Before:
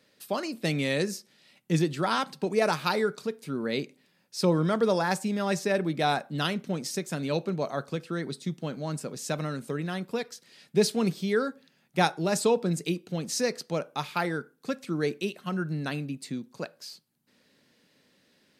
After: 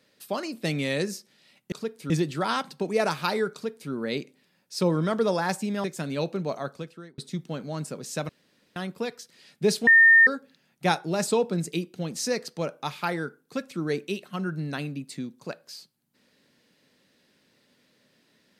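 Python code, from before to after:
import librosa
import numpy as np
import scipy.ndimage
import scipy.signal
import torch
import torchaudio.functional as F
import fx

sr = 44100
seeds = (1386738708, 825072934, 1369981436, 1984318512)

y = fx.edit(x, sr, fx.duplicate(start_s=3.15, length_s=0.38, to_s=1.72),
    fx.cut(start_s=5.46, length_s=1.51),
    fx.fade_out_span(start_s=7.7, length_s=0.61),
    fx.room_tone_fill(start_s=9.42, length_s=0.47),
    fx.bleep(start_s=11.0, length_s=0.4, hz=1820.0, db=-11.5), tone=tone)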